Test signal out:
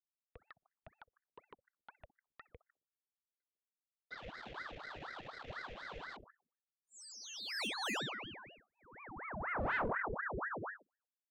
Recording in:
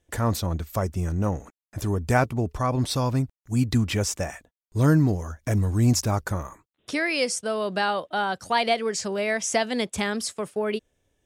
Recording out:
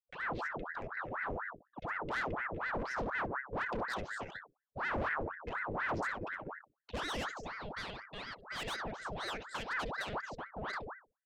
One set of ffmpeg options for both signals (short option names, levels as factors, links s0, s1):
-filter_complex "[0:a]asplit=3[s0][s1][s2];[s0]bandpass=f=270:t=q:w=8,volume=1[s3];[s1]bandpass=f=2290:t=q:w=8,volume=0.501[s4];[s2]bandpass=f=3010:t=q:w=8,volume=0.355[s5];[s3][s4][s5]amix=inputs=3:normalize=0,equalizer=f=150:t=o:w=0.37:g=3.5,acrossover=split=180|4700[s6][s7][s8];[s8]adelay=70[s9];[s6]adelay=150[s10];[s10][s7][s9]amix=inputs=3:normalize=0,aresample=16000,asoftclip=type=hard:threshold=0.0158,aresample=44100,aeval=exprs='0.0224*(cos(1*acos(clip(val(0)/0.0224,-1,1)))-cos(1*PI/2))+0.00447*(cos(2*acos(clip(val(0)/0.0224,-1,1)))-cos(2*PI/2))+0.000316*(cos(4*acos(clip(val(0)/0.0224,-1,1)))-cos(4*PI/2))+0.00316*(cos(5*acos(clip(val(0)/0.0224,-1,1)))-cos(5*PI/2))+0.000631*(cos(7*acos(clip(val(0)/0.0224,-1,1)))-cos(7*PI/2))':c=same,lowshelf=f=220:g=7,asplit=2[s11][s12];[s12]adelay=61,lowpass=f=1700:p=1,volume=0.282,asplit=2[s13][s14];[s14]adelay=61,lowpass=f=1700:p=1,volume=0.46,asplit=2[s15][s16];[s16]adelay=61,lowpass=f=1700:p=1,volume=0.46,asplit=2[s17][s18];[s18]adelay=61,lowpass=f=1700:p=1,volume=0.46,asplit=2[s19][s20];[s20]adelay=61,lowpass=f=1700:p=1,volume=0.46[s21];[s13][s15][s17][s19][s21]amix=inputs=5:normalize=0[s22];[s11][s22]amix=inputs=2:normalize=0,anlmdn=0.00398,aeval=exprs='val(0)*sin(2*PI*1000*n/s+1000*0.8/4.1*sin(2*PI*4.1*n/s))':c=same,volume=1.19"